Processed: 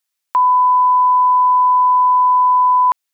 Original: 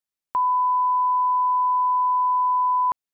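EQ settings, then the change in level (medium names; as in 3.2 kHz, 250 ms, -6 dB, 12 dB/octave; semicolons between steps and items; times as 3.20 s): tilt shelf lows -7.5 dB, about 640 Hz; +5.5 dB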